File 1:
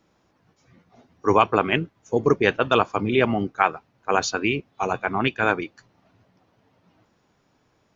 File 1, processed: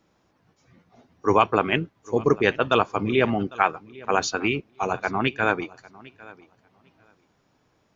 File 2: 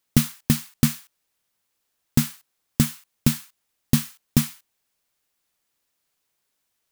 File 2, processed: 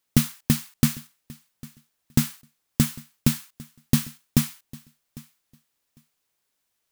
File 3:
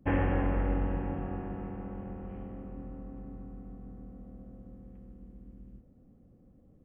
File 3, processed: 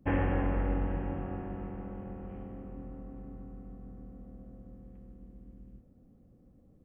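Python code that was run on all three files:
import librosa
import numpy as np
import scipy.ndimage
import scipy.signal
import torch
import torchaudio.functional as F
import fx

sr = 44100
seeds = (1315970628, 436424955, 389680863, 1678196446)

y = fx.echo_feedback(x, sr, ms=801, feedback_pct=16, wet_db=-22.0)
y = y * 10.0 ** (-1.0 / 20.0)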